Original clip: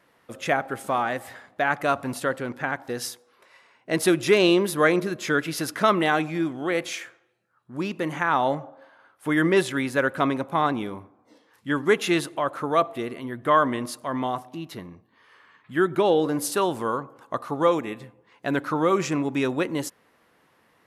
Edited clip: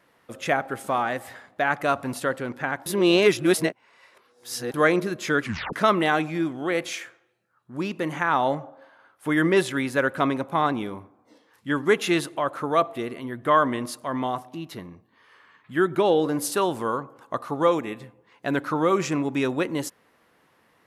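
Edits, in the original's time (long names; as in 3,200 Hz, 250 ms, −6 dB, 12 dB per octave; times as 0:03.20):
0:02.86–0:04.74: reverse
0:05.41: tape stop 0.32 s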